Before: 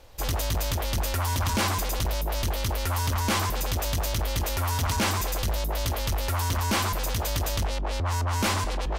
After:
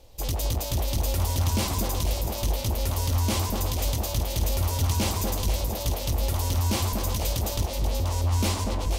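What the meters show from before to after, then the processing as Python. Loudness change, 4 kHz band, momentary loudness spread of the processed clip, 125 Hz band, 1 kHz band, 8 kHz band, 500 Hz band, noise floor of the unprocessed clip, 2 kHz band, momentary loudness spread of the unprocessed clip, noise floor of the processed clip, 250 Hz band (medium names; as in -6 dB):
+0.5 dB, -1.0 dB, 3 LU, +2.0 dB, -4.0 dB, +0.5 dB, 0.0 dB, -29 dBFS, -7.0 dB, 3 LU, -31 dBFS, +1.5 dB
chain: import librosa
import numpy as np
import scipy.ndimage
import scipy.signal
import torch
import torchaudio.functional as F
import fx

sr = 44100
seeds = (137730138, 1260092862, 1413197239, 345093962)

y = fx.peak_eq(x, sr, hz=1500.0, db=-12.5, octaves=1.2)
y = fx.echo_alternate(y, sr, ms=241, hz=1700.0, feedback_pct=64, wet_db=-3.5)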